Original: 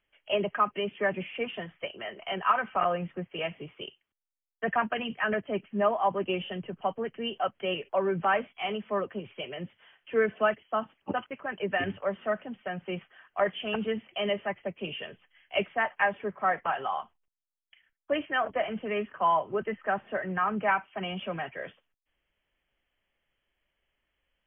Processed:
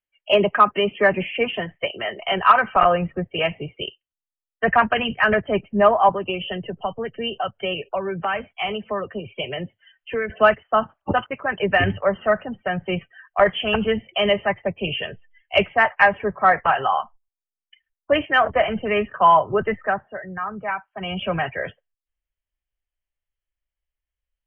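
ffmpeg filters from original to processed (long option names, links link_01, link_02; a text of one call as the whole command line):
ffmpeg -i in.wav -filter_complex "[0:a]asettb=1/sr,asplit=3[link_01][link_02][link_03];[link_01]atrim=end=6.094[link_04];[link_02]atrim=start=6.09:end=10.3,asetpts=PTS-STARTPTS,afade=type=in:duration=0.004:curve=qsin,afade=type=out:start_time=4.206:duration=0.004:curve=qsin,acrossover=split=210|2600[link_05][link_06][link_07];[link_05]acompressor=threshold=-49dB:ratio=4[link_08];[link_06]acompressor=threshold=-35dB:ratio=4[link_09];[link_07]acompressor=threshold=-43dB:ratio=4[link_10];[link_08][link_09][link_10]amix=inputs=3:normalize=0[link_11];[link_03]atrim=start=10.296[link_12];[link_04][link_11]acrossfade=duration=0.004:curve1=hsin:curve2=qsin[link_13];[link_13][link_12]acrossfade=duration=0.004:curve1=qsin:curve2=hsin,asplit=3[link_14][link_15][link_16];[link_14]atrim=end=20.09,asetpts=PTS-STARTPTS,afade=type=out:start_time=19.72:duration=0.37:silence=0.266073[link_17];[link_15]atrim=start=20.09:end=20.92,asetpts=PTS-STARTPTS,volume=-11.5dB[link_18];[link_16]atrim=start=20.92,asetpts=PTS-STARTPTS,afade=type=in:duration=0.37:silence=0.266073[link_19];[link_17][link_18][link_19]concat=n=3:v=0:a=1,afftdn=noise_reduction=28:noise_floor=-50,asubboost=boost=6.5:cutoff=88,acontrast=79,volume=4.5dB" out.wav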